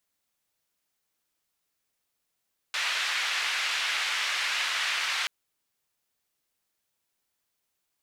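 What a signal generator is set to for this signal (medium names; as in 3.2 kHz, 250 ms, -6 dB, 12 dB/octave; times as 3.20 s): noise band 1.8–2.5 kHz, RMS -29 dBFS 2.53 s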